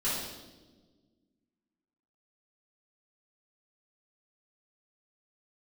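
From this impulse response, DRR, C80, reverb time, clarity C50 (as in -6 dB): -11.5 dB, 3.0 dB, 1.3 s, -0.5 dB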